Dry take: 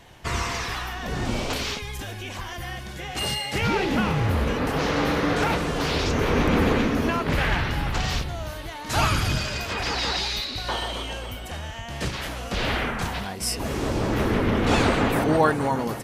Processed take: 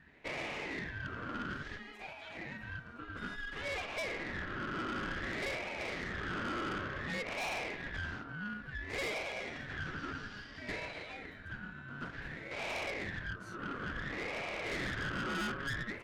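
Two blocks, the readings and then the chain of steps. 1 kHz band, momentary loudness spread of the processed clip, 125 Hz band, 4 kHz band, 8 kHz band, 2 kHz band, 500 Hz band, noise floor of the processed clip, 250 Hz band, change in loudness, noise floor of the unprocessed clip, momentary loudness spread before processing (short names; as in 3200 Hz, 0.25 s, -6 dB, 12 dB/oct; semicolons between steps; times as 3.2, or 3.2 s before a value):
-16.0 dB, 9 LU, -19.0 dB, -16.5 dB, -19.5 dB, -9.0 dB, -16.5 dB, -50 dBFS, -17.5 dB, -14.5 dB, -36 dBFS, 13 LU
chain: wah 0.57 Hz 570–1500 Hz, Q 5.3; ring modulator 830 Hz; tube stage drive 40 dB, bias 0.45; gain +6 dB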